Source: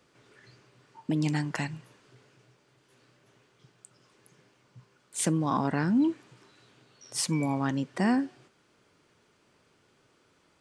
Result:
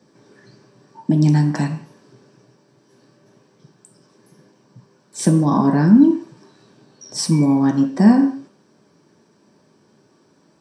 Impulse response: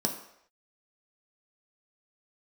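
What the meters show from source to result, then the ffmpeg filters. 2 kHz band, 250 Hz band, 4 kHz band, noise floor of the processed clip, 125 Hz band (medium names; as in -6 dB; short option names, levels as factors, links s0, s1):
+3.5 dB, +13.5 dB, +7.0 dB, -58 dBFS, +13.5 dB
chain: -filter_complex "[1:a]atrim=start_sample=2205,afade=t=out:st=0.26:d=0.01,atrim=end_sample=11907[s0];[0:a][s0]afir=irnorm=-1:irlink=0,volume=0.891"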